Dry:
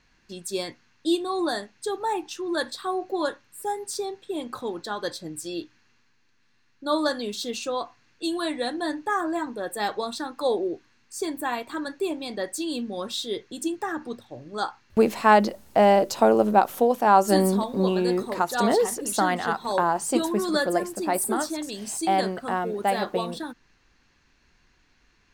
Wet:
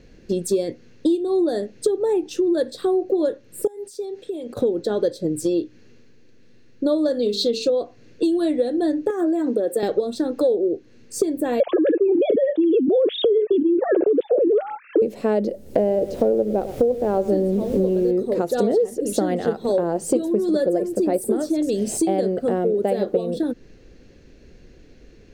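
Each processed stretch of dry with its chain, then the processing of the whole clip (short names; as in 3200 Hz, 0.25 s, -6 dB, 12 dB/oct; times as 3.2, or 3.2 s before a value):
3.67–4.57 low shelf 480 Hz -10.5 dB + compressor, threshold -47 dBFS
7.22–7.7 bell 4200 Hz +14 dB 0.47 oct + notches 50/100/150/200/250/300/350/400/450 Hz
9.1–9.83 HPF 190 Hz 24 dB/oct + high shelf 11000 Hz +6 dB + compressor 5:1, threshold -27 dBFS
11.6–15.02 sine-wave speech + bell 2600 Hz -8 dB 2.9 oct + fast leveller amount 100%
15.77–18.1 LPF 2100 Hz 6 dB/oct + added noise pink -40 dBFS + echo 0.107 s -16 dB
whole clip: resonant low shelf 700 Hz +11.5 dB, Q 3; compressor 6:1, threshold -24 dBFS; gain +5.5 dB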